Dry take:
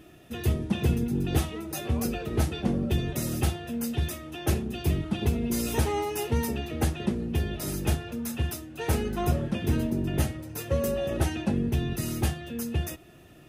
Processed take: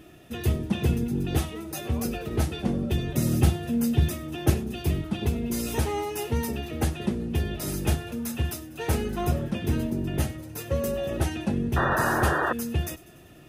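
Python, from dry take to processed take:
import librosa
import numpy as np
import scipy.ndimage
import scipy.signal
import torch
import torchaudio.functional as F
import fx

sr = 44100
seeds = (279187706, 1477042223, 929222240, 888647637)

p1 = fx.rider(x, sr, range_db=4, speed_s=2.0)
p2 = fx.peak_eq(p1, sr, hz=150.0, db=7.5, octaves=2.6, at=(3.14, 4.5))
p3 = fx.spec_paint(p2, sr, seeds[0], shape='noise', start_s=11.76, length_s=0.77, low_hz=290.0, high_hz=1900.0, level_db=-25.0)
y = p3 + fx.echo_wet_highpass(p3, sr, ms=97, feedback_pct=64, hz=3800.0, wet_db=-19.0, dry=0)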